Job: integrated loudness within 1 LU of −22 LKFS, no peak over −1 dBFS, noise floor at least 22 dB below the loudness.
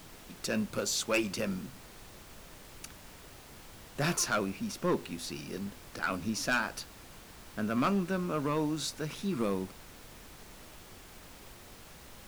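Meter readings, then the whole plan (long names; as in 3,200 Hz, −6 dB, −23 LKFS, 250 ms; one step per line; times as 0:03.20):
share of clipped samples 0.6%; peaks flattened at −23.0 dBFS; background noise floor −52 dBFS; target noise floor −55 dBFS; integrated loudness −33.0 LKFS; sample peak −23.0 dBFS; target loudness −22.0 LKFS
→ clipped peaks rebuilt −23 dBFS
noise reduction from a noise print 6 dB
level +11 dB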